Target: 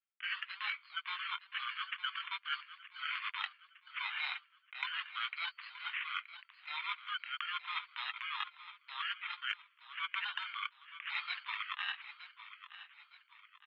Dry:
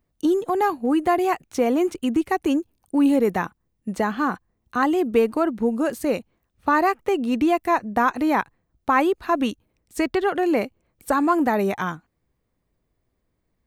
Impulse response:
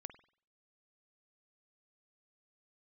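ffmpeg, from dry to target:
-filter_complex "[0:a]agate=range=-33dB:threshold=-57dB:ratio=3:detection=peak,acrusher=samples=5:mix=1:aa=0.000001,asuperpass=centerf=3600:order=12:qfactor=0.89,equalizer=frequency=4300:width=1.1:gain=7,asplit=2[link_01][link_02];[link_02]adelay=13,volume=-8.5dB[link_03];[link_01][link_03]amix=inputs=2:normalize=0,areverse,acompressor=threshold=-45dB:ratio=12,areverse,aderivative,aecho=1:1:916|1832|2748|3664:0.224|0.0918|0.0376|0.0154,asetrate=22696,aresample=44100,atempo=1.94306,volume=16dB"

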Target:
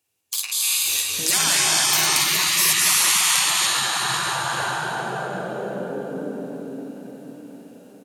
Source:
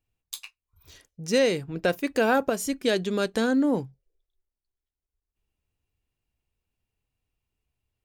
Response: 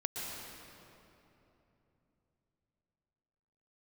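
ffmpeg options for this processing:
-filter_complex "[0:a]asplit=3[link_01][link_02][link_03];[link_01]afade=type=out:start_time=1.38:duration=0.02[link_04];[link_02]lowshelf=frequency=670:width_type=q:width=1.5:gain=-8.5,afade=type=in:start_time=1.38:duration=0.02,afade=type=out:start_time=2.15:duration=0.02[link_05];[link_03]afade=type=in:start_time=2.15:duration=0.02[link_06];[link_04][link_05][link_06]amix=inputs=3:normalize=0,aecho=1:1:44|56|272|651:0.376|0.501|0.178|0.168,acontrast=51[link_07];[1:a]atrim=start_sample=2205,asetrate=26019,aresample=44100[link_08];[link_07][link_08]afir=irnorm=-1:irlink=0,alimiter=limit=-5.5dB:level=0:latency=1:release=236,highpass=frequency=96:width=0.5412,highpass=frequency=96:width=1.3066,bass=frequency=250:gain=-11,treble=frequency=4000:gain=10,afftfilt=real='re*lt(hypot(re,im),0.126)':imag='im*lt(hypot(re,im),0.126)':win_size=1024:overlap=0.75,dynaudnorm=framelen=120:gausssize=11:maxgain=10dB"

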